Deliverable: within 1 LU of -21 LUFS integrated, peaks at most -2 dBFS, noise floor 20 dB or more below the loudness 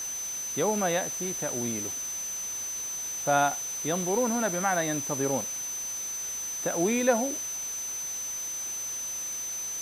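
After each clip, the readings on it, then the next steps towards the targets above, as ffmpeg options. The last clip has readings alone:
steady tone 6.1 kHz; tone level -32 dBFS; noise floor -35 dBFS; noise floor target -49 dBFS; loudness -28.5 LUFS; peak level -10.5 dBFS; loudness target -21.0 LUFS
-> -af "bandreject=f=6100:w=30"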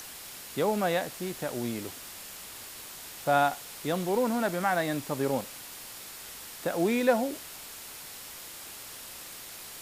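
steady tone not found; noise floor -44 dBFS; noise floor target -52 dBFS
-> -af "afftdn=nr=8:nf=-44"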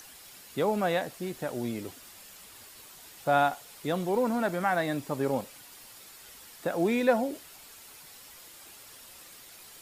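noise floor -51 dBFS; loudness -29.5 LUFS; peak level -11.5 dBFS; loudness target -21.0 LUFS
-> -af "volume=2.66"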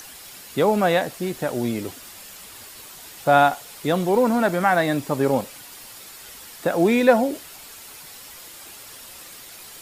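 loudness -21.0 LUFS; peak level -3.0 dBFS; noise floor -42 dBFS

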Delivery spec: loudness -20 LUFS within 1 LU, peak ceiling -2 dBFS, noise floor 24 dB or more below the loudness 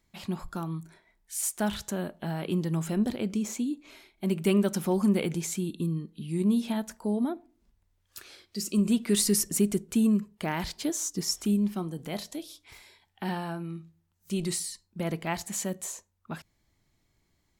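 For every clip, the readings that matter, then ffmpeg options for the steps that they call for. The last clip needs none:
loudness -29.5 LUFS; peak level -13.5 dBFS; loudness target -20.0 LUFS
-> -af "volume=2.99"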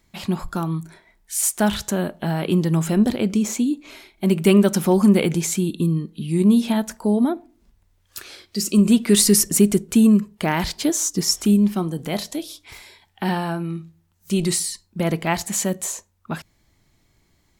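loudness -20.0 LUFS; peak level -4.0 dBFS; noise floor -64 dBFS

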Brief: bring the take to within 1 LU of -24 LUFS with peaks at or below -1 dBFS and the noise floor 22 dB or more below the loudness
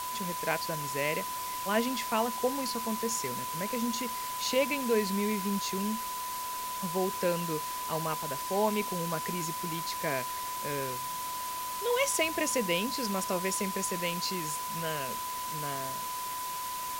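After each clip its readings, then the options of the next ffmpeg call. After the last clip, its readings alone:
steady tone 1 kHz; tone level -35 dBFS; noise floor -36 dBFS; noise floor target -54 dBFS; loudness -31.5 LUFS; peak level -15.0 dBFS; loudness target -24.0 LUFS
-> -af "bandreject=f=1000:w=30"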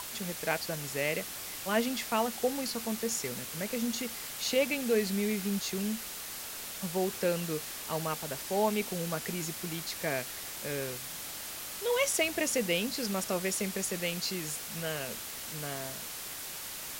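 steady tone not found; noise floor -41 dBFS; noise floor target -55 dBFS
-> -af "afftdn=nr=14:nf=-41"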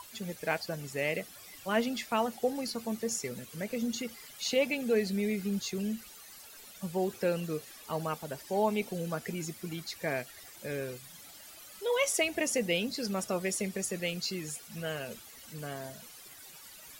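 noise floor -51 dBFS; noise floor target -56 dBFS
-> -af "afftdn=nr=6:nf=-51"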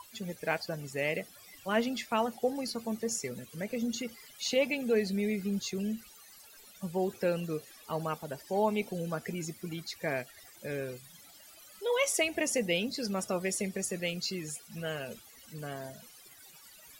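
noise floor -55 dBFS; noise floor target -56 dBFS
-> -af "afftdn=nr=6:nf=-55"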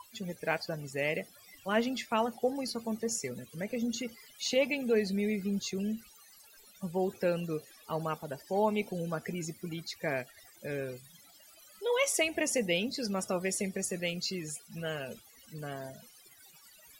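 noise floor -58 dBFS; loudness -33.5 LUFS; peak level -15.0 dBFS; loudness target -24.0 LUFS
-> -af "volume=2.99"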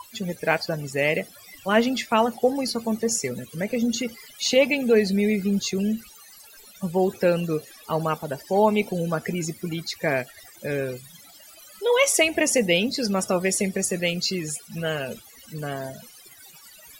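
loudness -24.0 LUFS; peak level -5.5 dBFS; noise floor -49 dBFS

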